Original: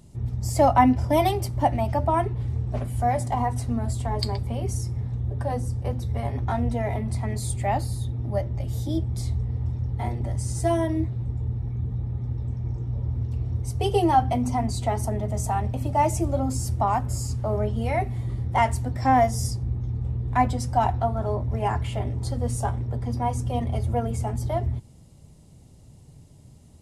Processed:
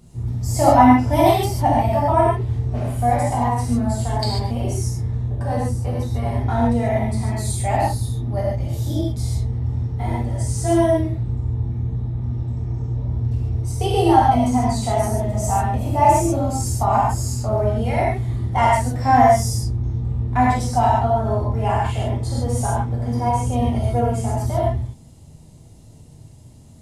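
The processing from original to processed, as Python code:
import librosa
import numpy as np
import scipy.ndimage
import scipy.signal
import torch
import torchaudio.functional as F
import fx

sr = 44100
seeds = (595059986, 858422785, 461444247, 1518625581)

y = fx.rev_gated(x, sr, seeds[0], gate_ms=170, shape='flat', drr_db=-5.5)
y = y * librosa.db_to_amplitude(-1.0)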